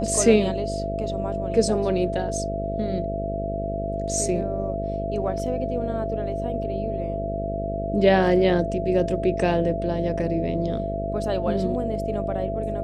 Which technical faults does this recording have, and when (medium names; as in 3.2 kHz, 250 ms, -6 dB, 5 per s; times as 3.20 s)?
buzz 50 Hz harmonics 13 -30 dBFS
whine 670 Hz -28 dBFS